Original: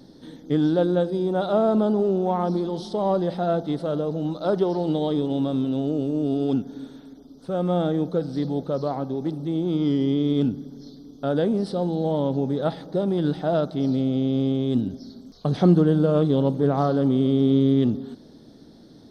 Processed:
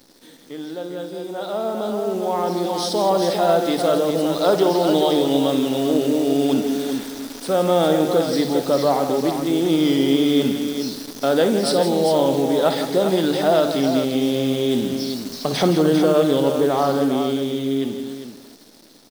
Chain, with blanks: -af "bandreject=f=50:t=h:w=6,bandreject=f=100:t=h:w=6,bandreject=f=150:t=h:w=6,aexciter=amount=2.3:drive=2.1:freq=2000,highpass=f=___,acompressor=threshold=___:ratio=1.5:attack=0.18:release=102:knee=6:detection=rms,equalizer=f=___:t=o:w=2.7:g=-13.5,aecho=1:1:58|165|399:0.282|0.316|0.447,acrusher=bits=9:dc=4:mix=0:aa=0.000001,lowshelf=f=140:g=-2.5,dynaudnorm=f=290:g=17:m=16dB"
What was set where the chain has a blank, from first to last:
74, -33dB, 98